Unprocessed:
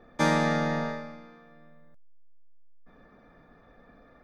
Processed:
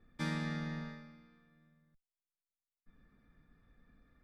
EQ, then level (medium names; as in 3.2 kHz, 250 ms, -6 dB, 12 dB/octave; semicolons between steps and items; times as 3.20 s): amplifier tone stack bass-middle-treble 6-0-2; treble shelf 4.6 kHz -6.5 dB; band-stop 6.4 kHz, Q 6.6; +7.5 dB